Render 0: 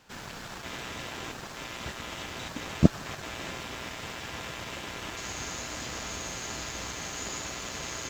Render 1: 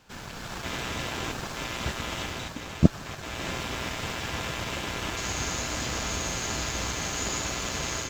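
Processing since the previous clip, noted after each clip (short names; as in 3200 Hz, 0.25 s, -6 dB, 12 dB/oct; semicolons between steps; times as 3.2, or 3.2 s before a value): low shelf 130 Hz +5.5 dB; notch 1900 Hz, Q 28; AGC gain up to 5.5 dB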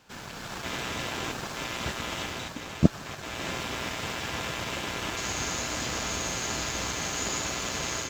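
low shelf 77 Hz -9 dB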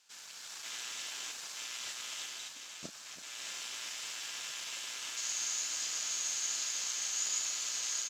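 band-pass 7300 Hz, Q 0.94; doubler 34 ms -11.5 dB; echo 0.33 s -14 dB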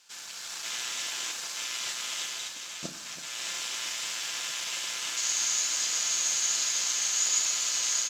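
reverb RT60 0.75 s, pre-delay 6 ms, DRR 10 dB; gain +7.5 dB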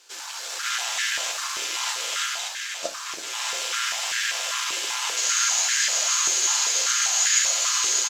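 doubler 13 ms -10.5 dB; stepped high-pass 5.1 Hz 390–1700 Hz; gain +5 dB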